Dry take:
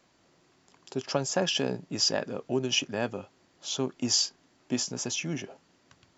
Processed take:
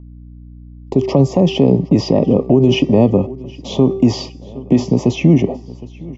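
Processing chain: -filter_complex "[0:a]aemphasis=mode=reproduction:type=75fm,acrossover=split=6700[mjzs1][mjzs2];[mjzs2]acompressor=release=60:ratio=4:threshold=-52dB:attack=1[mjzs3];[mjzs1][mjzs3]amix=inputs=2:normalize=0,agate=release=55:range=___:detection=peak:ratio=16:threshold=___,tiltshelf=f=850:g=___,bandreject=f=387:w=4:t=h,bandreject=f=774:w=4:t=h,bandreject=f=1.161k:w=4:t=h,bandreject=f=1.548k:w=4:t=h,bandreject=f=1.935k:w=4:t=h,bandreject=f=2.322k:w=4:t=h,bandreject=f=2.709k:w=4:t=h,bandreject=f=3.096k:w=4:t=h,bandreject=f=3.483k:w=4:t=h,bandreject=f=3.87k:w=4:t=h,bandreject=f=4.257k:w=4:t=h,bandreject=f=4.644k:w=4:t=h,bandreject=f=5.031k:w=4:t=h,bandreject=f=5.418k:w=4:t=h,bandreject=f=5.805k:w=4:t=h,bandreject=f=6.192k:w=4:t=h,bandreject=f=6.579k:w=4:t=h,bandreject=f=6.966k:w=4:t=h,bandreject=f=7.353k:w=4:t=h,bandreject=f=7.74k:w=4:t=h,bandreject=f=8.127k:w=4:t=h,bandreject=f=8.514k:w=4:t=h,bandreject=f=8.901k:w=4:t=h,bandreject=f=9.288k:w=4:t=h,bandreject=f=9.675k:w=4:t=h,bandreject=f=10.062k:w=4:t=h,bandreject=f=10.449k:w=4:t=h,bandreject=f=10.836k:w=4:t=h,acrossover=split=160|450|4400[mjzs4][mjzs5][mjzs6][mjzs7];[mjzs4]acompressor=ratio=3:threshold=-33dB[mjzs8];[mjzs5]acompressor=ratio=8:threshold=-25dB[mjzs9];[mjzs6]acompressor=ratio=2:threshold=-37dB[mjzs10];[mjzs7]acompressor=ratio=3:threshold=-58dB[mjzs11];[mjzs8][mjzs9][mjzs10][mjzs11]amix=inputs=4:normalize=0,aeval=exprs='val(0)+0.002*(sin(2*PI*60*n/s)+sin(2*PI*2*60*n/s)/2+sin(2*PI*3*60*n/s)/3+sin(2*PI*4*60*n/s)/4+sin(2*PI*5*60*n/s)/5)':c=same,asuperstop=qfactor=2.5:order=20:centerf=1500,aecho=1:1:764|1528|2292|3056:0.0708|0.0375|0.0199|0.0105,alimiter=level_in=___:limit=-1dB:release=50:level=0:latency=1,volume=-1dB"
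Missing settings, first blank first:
-46dB, -54dB, 8.5, 20dB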